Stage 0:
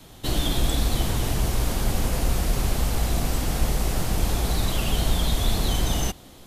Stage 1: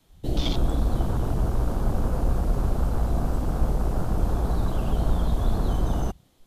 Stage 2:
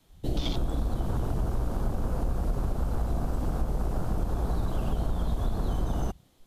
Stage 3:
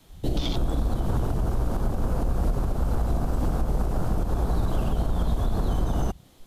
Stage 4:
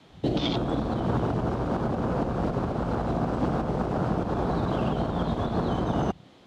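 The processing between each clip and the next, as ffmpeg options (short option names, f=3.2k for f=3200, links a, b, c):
-af "afwtdn=0.0316"
-af "acompressor=threshold=-22dB:ratio=6,volume=-1dB"
-af "alimiter=limit=-24dB:level=0:latency=1:release=238,volume=8.5dB"
-af "highpass=140,lowpass=3.6k,volume=5dB"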